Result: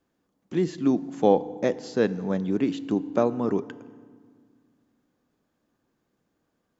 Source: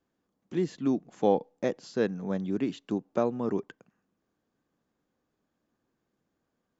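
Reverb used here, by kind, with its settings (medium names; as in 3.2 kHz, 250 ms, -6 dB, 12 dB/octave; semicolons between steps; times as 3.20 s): FDN reverb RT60 1.8 s, low-frequency decay 1.5×, high-frequency decay 0.7×, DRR 15 dB; trim +4.5 dB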